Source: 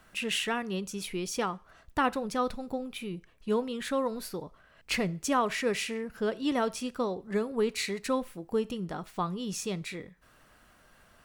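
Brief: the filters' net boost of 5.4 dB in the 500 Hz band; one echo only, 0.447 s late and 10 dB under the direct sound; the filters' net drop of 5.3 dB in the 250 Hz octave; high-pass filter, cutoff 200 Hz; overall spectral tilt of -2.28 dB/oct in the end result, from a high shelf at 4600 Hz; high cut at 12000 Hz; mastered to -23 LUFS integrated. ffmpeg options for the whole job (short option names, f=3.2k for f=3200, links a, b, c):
-af "highpass=200,lowpass=12k,equalizer=f=250:t=o:g=-6.5,equalizer=f=500:t=o:g=8,highshelf=f=4.6k:g=7,aecho=1:1:447:0.316,volume=6dB"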